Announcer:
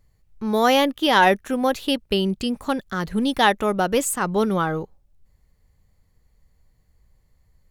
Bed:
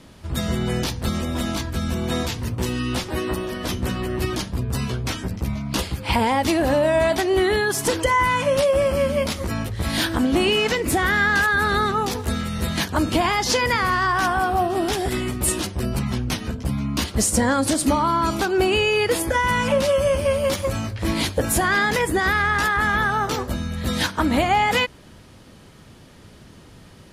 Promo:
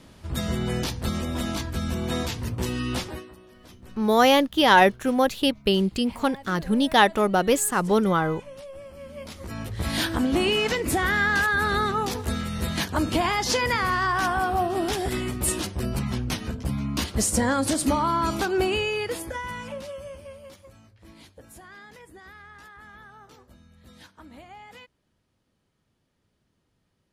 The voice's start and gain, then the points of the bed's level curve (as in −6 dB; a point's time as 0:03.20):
3.55 s, 0.0 dB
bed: 0:03.07 −3.5 dB
0:03.31 −23 dB
0:08.95 −23 dB
0:09.78 −3.5 dB
0:18.55 −3.5 dB
0:20.75 −27 dB